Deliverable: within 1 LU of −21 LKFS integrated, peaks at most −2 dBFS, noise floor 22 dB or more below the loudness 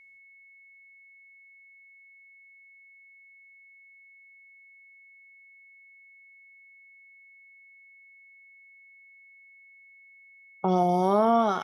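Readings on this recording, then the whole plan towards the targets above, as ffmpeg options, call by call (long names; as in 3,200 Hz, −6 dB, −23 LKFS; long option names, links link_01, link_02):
interfering tone 2,200 Hz; level of the tone −52 dBFS; integrated loudness −23.5 LKFS; sample peak −12.0 dBFS; target loudness −21.0 LKFS
→ -af "bandreject=frequency=2200:width=30"
-af "volume=2.5dB"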